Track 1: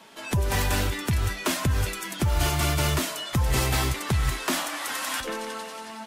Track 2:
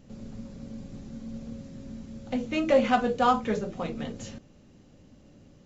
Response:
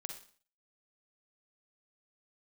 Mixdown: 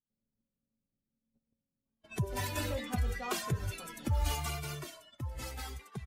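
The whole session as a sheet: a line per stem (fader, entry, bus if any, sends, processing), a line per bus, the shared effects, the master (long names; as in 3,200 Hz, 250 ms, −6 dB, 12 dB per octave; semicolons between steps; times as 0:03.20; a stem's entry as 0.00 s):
0:04.36 −4 dB → 0:04.84 −12 dB, 1.85 s, no send, spectral dynamics exaggerated over time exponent 1.5; barber-pole flanger 2.1 ms −0.75 Hz
−19.0 dB, 0.00 s, no send, no processing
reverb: not used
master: noise gate −52 dBFS, range −28 dB; one half of a high-frequency compander decoder only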